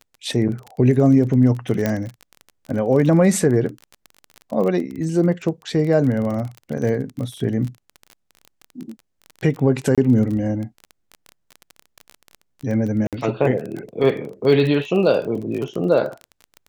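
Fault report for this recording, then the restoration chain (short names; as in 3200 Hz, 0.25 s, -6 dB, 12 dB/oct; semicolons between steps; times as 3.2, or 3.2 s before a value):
crackle 22/s -26 dBFS
1.86 pop -7 dBFS
9.95–9.98 gap 26 ms
13.07–13.13 gap 57 ms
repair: de-click; interpolate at 9.95, 26 ms; interpolate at 13.07, 57 ms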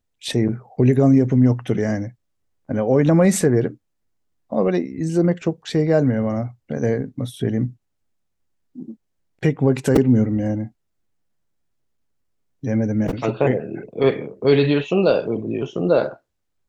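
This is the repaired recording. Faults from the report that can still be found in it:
none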